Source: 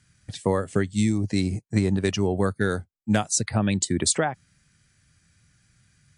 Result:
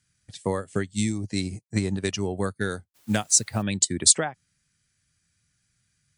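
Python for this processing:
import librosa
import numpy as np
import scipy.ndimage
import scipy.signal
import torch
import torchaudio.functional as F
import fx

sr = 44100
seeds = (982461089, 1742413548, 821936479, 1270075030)

y = fx.high_shelf(x, sr, hz=2600.0, db=7.5)
y = fx.quant_dither(y, sr, seeds[0], bits=8, dither='triangular', at=(2.94, 3.61), fade=0.02)
y = fx.upward_expand(y, sr, threshold_db=-37.0, expansion=1.5)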